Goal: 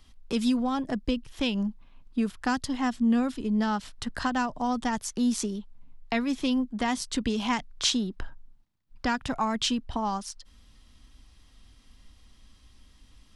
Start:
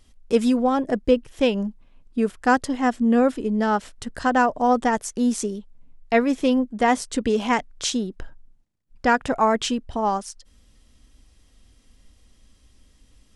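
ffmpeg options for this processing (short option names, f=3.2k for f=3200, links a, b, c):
-filter_complex "[0:a]acrossover=split=230|3000[a][b][c];[b]acompressor=threshold=-30dB:ratio=4[d];[a][d][c]amix=inputs=3:normalize=0,equalizer=f=500:t=o:w=1:g=-6,equalizer=f=1k:t=o:w=1:g=5,equalizer=f=4k:t=o:w=1:g=4,equalizer=f=8k:t=o:w=1:g=-5"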